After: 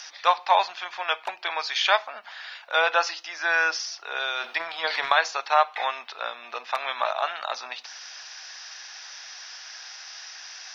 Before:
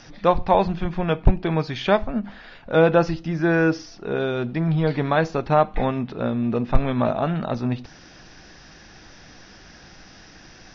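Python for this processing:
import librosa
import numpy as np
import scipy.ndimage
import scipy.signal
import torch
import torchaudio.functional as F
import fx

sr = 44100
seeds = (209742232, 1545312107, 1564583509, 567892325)

y = scipy.signal.sosfilt(scipy.signal.butter(4, 790.0, 'highpass', fs=sr, output='sos'), x)
y = fx.high_shelf(y, sr, hz=2900.0, db=11.5)
y = fx.transient(y, sr, attack_db=5, sustain_db=9, at=(4.4, 5.12))
y = y * librosa.db_to_amplitude(1.5)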